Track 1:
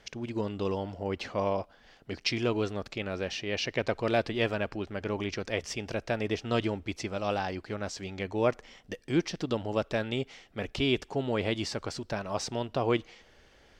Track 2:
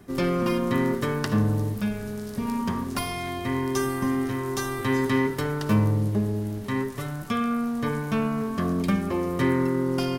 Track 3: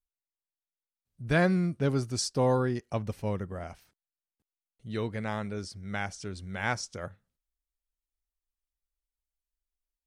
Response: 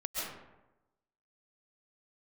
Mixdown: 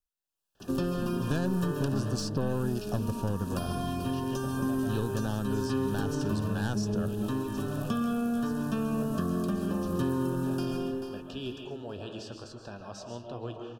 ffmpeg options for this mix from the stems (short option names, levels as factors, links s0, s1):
-filter_complex "[0:a]flanger=delay=8:depth=2.2:regen=66:speed=1.1:shape=sinusoidal,adelay=550,volume=0.335,asplit=2[s0][s1];[s1]volume=0.668[s2];[1:a]bandreject=f=50:t=h:w=6,bandreject=f=100:t=h:w=6,bandreject=f=150:t=h:w=6,tremolo=f=0.94:d=0.54,adelay=600,volume=1.12,asplit=3[s3][s4][s5];[s4]volume=0.668[s6];[s5]volume=0.282[s7];[2:a]dynaudnorm=f=110:g=7:m=3.98,aeval=exprs='(tanh(5.01*val(0)+0.5)-tanh(0.5))/5.01':c=same,volume=1.19[s8];[3:a]atrim=start_sample=2205[s9];[s2][s6]amix=inputs=2:normalize=0[s10];[s10][s9]afir=irnorm=-1:irlink=0[s11];[s7]aecho=0:1:437|874|1311|1748|2185:1|0.39|0.152|0.0593|0.0231[s12];[s0][s3][s8][s11][s12]amix=inputs=5:normalize=0,asuperstop=centerf=2100:order=12:qfactor=3.2,acrossover=split=360|5800[s13][s14][s15];[s13]acompressor=threshold=0.0355:ratio=4[s16];[s14]acompressor=threshold=0.0112:ratio=4[s17];[s15]acompressor=threshold=0.00282:ratio=4[s18];[s16][s17][s18]amix=inputs=3:normalize=0"